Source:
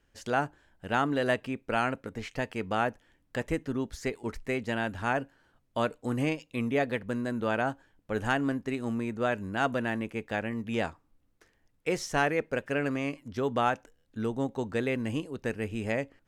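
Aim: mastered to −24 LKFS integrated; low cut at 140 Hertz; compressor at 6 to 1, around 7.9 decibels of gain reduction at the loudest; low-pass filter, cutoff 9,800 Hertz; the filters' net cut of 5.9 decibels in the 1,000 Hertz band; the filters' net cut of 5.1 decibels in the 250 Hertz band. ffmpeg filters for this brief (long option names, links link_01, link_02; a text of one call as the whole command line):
ffmpeg -i in.wav -af "highpass=140,lowpass=9800,equalizer=frequency=250:width_type=o:gain=-5,equalizer=frequency=1000:width_type=o:gain=-8.5,acompressor=threshold=-34dB:ratio=6,volume=16dB" out.wav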